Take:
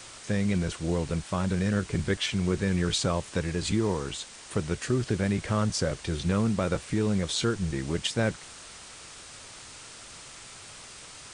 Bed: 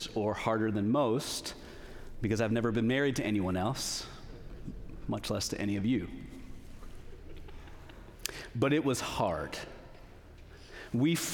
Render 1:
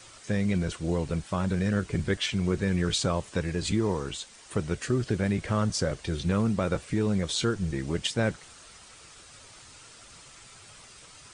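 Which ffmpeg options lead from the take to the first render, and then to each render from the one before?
-af "afftdn=nr=7:nf=-46"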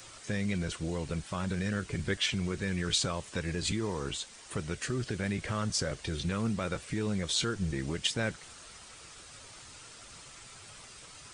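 -filter_complex "[0:a]acrossover=split=1400[a][b];[a]alimiter=limit=-24dB:level=0:latency=1:release=187[c];[b]acompressor=mode=upward:threshold=-56dB:ratio=2.5[d];[c][d]amix=inputs=2:normalize=0"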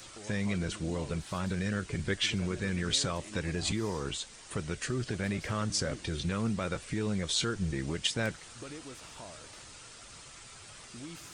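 -filter_complex "[1:a]volume=-17.5dB[a];[0:a][a]amix=inputs=2:normalize=0"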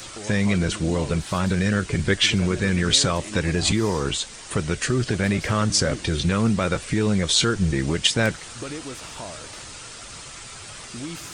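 -af "volume=11dB"

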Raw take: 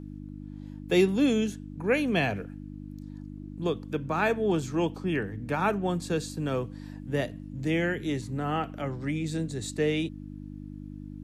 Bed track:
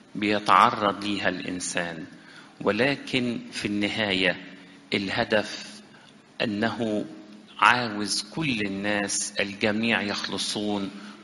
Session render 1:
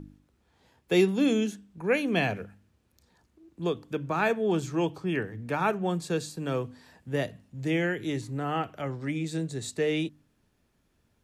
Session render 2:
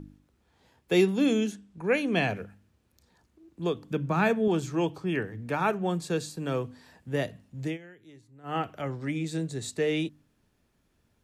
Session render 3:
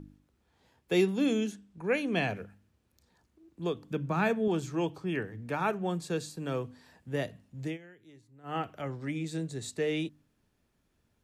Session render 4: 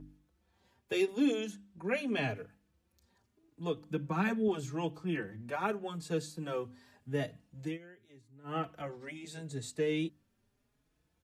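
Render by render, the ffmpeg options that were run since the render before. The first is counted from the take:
-af "bandreject=f=50:t=h:w=4,bandreject=f=100:t=h:w=4,bandreject=f=150:t=h:w=4,bandreject=f=200:t=h:w=4,bandreject=f=250:t=h:w=4,bandreject=f=300:t=h:w=4"
-filter_complex "[0:a]asettb=1/sr,asplit=3[a][b][c];[a]atrim=end=1.524[d];[b]atrim=start=1.52:end=2.28,asetpts=PTS-STARTPTS,afade=t=in:d=0.004:c=qsin,afade=t=out:st=0.756:d=0.004:c=qsin,lowpass=f=11k:w=0.5412,lowpass=f=11k:w=1.3066[e];[c]atrim=start=2.276[f];[d][e]acrossfade=d=0.004:c1=hsin:c2=qsin[g];[g][f]acrossfade=d=0.004:c1=qsin:c2=hsin,asettb=1/sr,asplit=3[h][i][j];[h]atrim=end=3.824[k];[i]atrim=start=3.82:end=4.48,asetpts=PTS-STARTPTS,afade=t=in:d=0.004:c=qsin,afade=t=out:st=0.656:d=0.004:c=qsin,equalizer=f=180:t=o:w=0.77:g=9[l];[j]atrim=start=4.476[m];[k][l]acrossfade=d=0.004:c1=hsin:c2=qsin[n];[n][m]acrossfade=d=0.004:c1=qsin:c2=hsin,asplit=3[o][p][q];[o]atrim=end=7.78,asetpts=PTS-STARTPTS,afade=t=out:st=7.65:d=0.13:silence=0.0891251[r];[p]atrim=start=7.78:end=8.43,asetpts=PTS-STARTPTS,volume=-21dB[s];[q]atrim=start=8.43,asetpts=PTS-STARTPTS,afade=t=in:d=0.13:silence=0.0891251[t];[r][s][t]concat=n=3:v=0:a=1"
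-af "volume=-3.5dB"
-filter_complex "[0:a]asplit=2[a][b];[b]adelay=4.3,afreqshift=0.83[c];[a][c]amix=inputs=2:normalize=1"

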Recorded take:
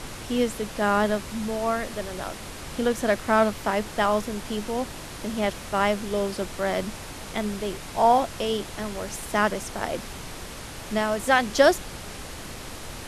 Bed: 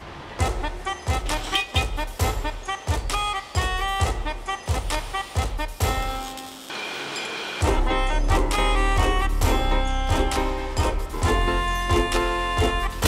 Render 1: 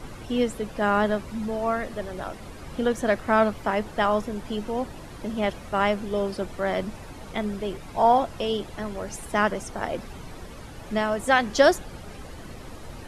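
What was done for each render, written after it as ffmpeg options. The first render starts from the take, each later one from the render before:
-af "afftdn=nr=11:nf=-39"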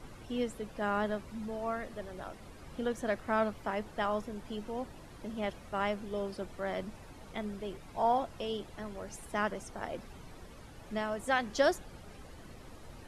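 -af "volume=-10dB"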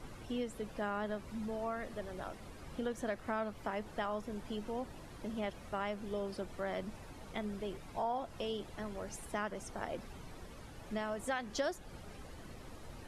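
-af "acompressor=threshold=-35dB:ratio=3"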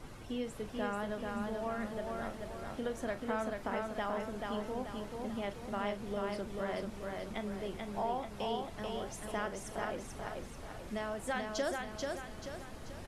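-filter_complex "[0:a]asplit=2[a][b];[b]adelay=40,volume=-13dB[c];[a][c]amix=inputs=2:normalize=0,aecho=1:1:436|872|1308|1744|2180|2616:0.668|0.301|0.135|0.0609|0.0274|0.0123"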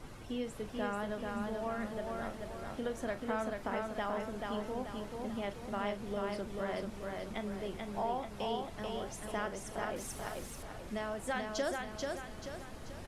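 -filter_complex "[0:a]asettb=1/sr,asplit=3[a][b][c];[a]atrim=end=9.964[d];[b]atrim=start=9.96:end=10.63,asetpts=PTS-STARTPTS,afade=t=in:d=0.004:c=qsin,afade=t=out:st=0.666:d=0.004:c=qsin,aemphasis=mode=production:type=50kf[e];[c]atrim=start=10.626[f];[d][e]acrossfade=d=0.004:c1=hsin:c2=qsin[g];[g][f]acrossfade=d=0.004:c1=qsin:c2=hsin"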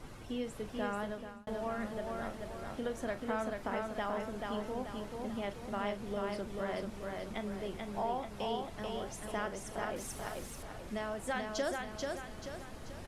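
-filter_complex "[0:a]asplit=2[a][b];[a]atrim=end=1.47,asetpts=PTS-STARTPTS,afade=t=out:st=1.03:d=0.44[c];[b]atrim=start=1.47,asetpts=PTS-STARTPTS,afade=t=in:d=0.004:c=hsin[d];[c][d]concat=n=2:v=0:a=1"

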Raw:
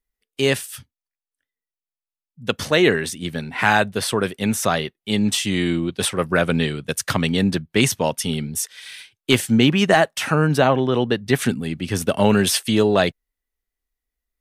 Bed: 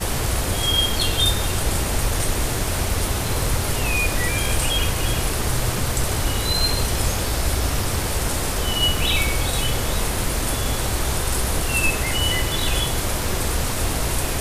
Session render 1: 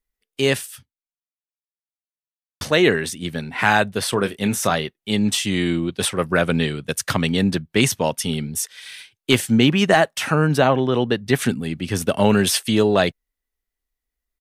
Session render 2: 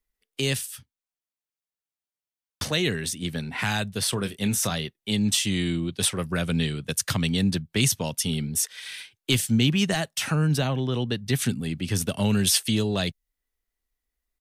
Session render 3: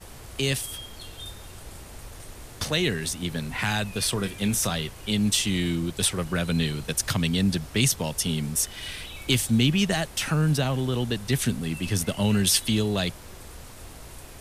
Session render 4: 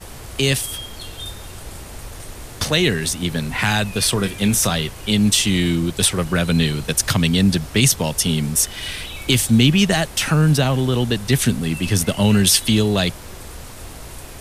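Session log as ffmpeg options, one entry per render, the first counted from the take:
-filter_complex "[0:a]asplit=3[a][b][c];[a]afade=t=out:st=4.12:d=0.02[d];[b]asplit=2[e][f];[f]adelay=25,volume=-11dB[g];[e][g]amix=inputs=2:normalize=0,afade=t=in:st=4.12:d=0.02,afade=t=out:st=4.74:d=0.02[h];[c]afade=t=in:st=4.74:d=0.02[i];[d][h][i]amix=inputs=3:normalize=0,asplit=2[j][k];[j]atrim=end=2.61,asetpts=PTS-STARTPTS,afade=t=out:st=0.66:d=1.95:c=exp[l];[k]atrim=start=2.61,asetpts=PTS-STARTPTS,afade=t=in:d=0.004:c=hsin[m];[l][m]concat=n=2:v=0:a=1"
-filter_complex "[0:a]acrossover=split=190|3000[a][b][c];[b]acompressor=threshold=-35dB:ratio=2.5[d];[a][d][c]amix=inputs=3:normalize=0"
-filter_complex "[1:a]volume=-20.5dB[a];[0:a][a]amix=inputs=2:normalize=0"
-af "volume=7.5dB,alimiter=limit=-3dB:level=0:latency=1"

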